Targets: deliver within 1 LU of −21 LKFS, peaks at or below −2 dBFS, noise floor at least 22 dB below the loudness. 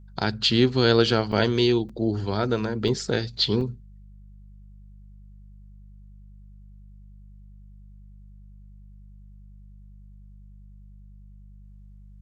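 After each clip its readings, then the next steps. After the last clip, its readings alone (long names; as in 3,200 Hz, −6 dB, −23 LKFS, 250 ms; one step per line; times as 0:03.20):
number of dropouts 4; longest dropout 4.7 ms; mains hum 50 Hz; hum harmonics up to 200 Hz; level of the hum −44 dBFS; integrated loudness −23.0 LKFS; sample peak −4.5 dBFS; target loudness −21.0 LKFS
→ repair the gap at 0:01.32/0:01.89/0:02.88/0:03.61, 4.7 ms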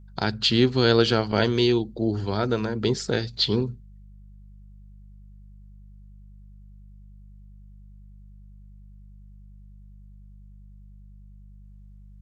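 number of dropouts 0; mains hum 50 Hz; hum harmonics up to 200 Hz; level of the hum −44 dBFS
→ hum removal 50 Hz, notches 4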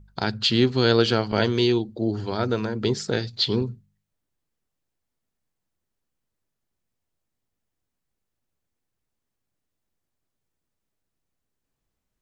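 mains hum none found; integrated loudness −23.0 LKFS; sample peak −4.5 dBFS; target loudness −21.0 LKFS
→ level +2 dB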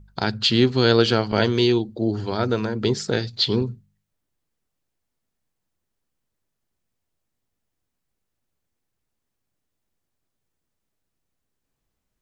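integrated loudness −21.0 LKFS; sample peak −2.5 dBFS; background noise floor −80 dBFS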